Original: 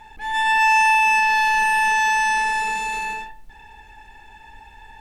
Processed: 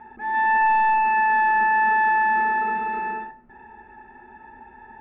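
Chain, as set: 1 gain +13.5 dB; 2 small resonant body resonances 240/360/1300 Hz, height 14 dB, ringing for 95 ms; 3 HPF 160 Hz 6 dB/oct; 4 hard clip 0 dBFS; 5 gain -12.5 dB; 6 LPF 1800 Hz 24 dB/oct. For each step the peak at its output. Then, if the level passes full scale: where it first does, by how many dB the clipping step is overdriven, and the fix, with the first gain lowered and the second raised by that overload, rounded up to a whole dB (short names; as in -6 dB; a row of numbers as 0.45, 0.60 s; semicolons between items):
+7.0, +7.0, +7.0, 0.0, -12.5, -12.5 dBFS; step 1, 7.0 dB; step 1 +6.5 dB, step 5 -5.5 dB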